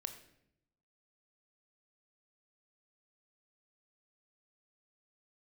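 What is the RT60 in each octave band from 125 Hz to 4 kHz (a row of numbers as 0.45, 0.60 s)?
1.2, 1.0, 0.85, 0.65, 0.70, 0.60 s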